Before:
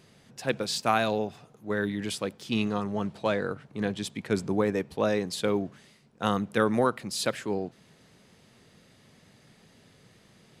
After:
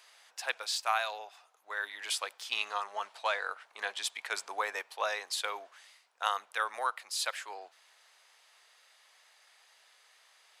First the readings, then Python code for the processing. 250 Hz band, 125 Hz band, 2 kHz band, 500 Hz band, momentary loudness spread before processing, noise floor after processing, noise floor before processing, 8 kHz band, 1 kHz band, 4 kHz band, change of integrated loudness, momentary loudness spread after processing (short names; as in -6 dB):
-35.5 dB, under -40 dB, 0.0 dB, -14.0 dB, 9 LU, -66 dBFS, -60 dBFS, -0.5 dB, -2.5 dB, 0.0 dB, -5.5 dB, 10 LU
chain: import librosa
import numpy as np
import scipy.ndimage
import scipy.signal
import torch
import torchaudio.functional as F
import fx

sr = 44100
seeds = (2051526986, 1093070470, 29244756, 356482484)

y = scipy.signal.sosfilt(scipy.signal.butter(4, 790.0, 'highpass', fs=sr, output='sos'), x)
y = fx.rider(y, sr, range_db=3, speed_s=0.5)